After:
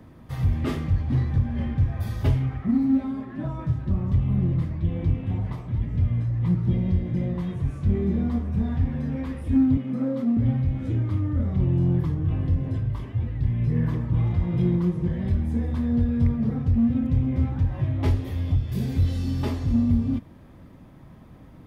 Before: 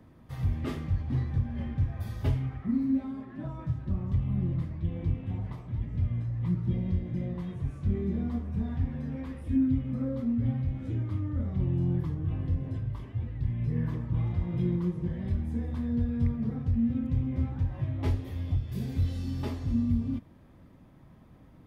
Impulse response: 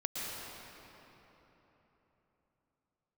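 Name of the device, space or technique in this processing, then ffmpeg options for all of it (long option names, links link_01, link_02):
parallel distortion: -filter_complex "[0:a]asplit=2[link_01][link_02];[link_02]asoftclip=type=hard:threshold=-30.5dB,volume=-10.5dB[link_03];[link_01][link_03]amix=inputs=2:normalize=0,asettb=1/sr,asplit=3[link_04][link_05][link_06];[link_04]atrim=end=9.774[link_07];[link_05]atrim=start=9.77:end=10.37,asetpts=PTS-STARTPTS,afade=type=in:duration=0.004:curve=qsin,afade=type=out:start_time=0.596:duration=0.004:curve=qsin,highpass=frequency=160:width=0.5412,highpass=frequency=160:width=1.3066[link_08];[link_06]atrim=start=10.366[link_09];[link_07][link_08]acrossfade=duration=0.004:curve1=hsin:curve2=qsin[link_10];[link_10][link_09]acrossfade=duration=0.004:curve1=qsin:curve2=hsin,volume=5dB"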